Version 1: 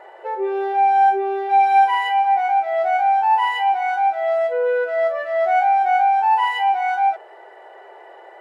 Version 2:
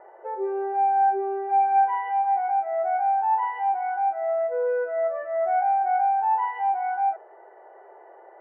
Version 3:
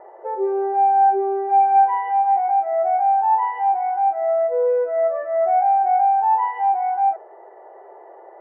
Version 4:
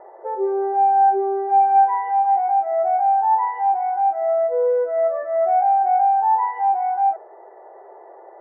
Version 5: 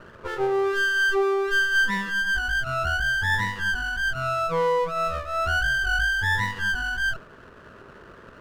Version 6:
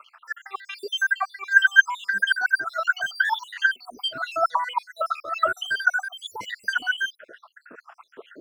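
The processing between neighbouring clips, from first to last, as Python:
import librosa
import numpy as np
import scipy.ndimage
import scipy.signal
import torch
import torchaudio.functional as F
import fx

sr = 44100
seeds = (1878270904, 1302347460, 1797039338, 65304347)

y1 = scipy.signal.sosfilt(scipy.signal.bessel(6, 1200.0, 'lowpass', norm='mag', fs=sr, output='sos'), x)
y1 = F.gain(torch.from_numpy(y1), -4.5).numpy()
y2 = fx.high_shelf(y1, sr, hz=2300.0, db=-11.5)
y2 = fx.notch(y2, sr, hz=1500.0, q=12.0)
y2 = F.gain(torch.from_numpy(y2), 6.5).numpy()
y3 = scipy.signal.sosfilt(scipy.signal.butter(4, 2100.0, 'lowpass', fs=sr, output='sos'), y2)
y4 = fx.lower_of_two(y3, sr, delay_ms=0.63)
y5 = fx.spec_dropout(y4, sr, seeds[0], share_pct=70)
y5 = fx.filter_lfo_highpass(y5, sr, shape='sine', hz=4.5, low_hz=290.0, high_hz=3200.0, q=4.5)
y5 = F.gain(torch.from_numpy(y5), 1.0).numpy()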